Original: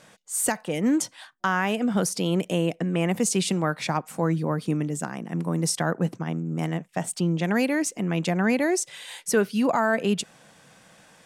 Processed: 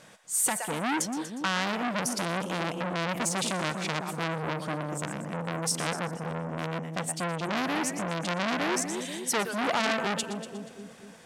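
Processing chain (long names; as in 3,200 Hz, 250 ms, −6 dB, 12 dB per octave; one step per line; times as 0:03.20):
echo with a time of its own for lows and highs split 560 Hz, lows 241 ms, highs 120 ms, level −9 dB
saturating transformer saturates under 3,200 Hz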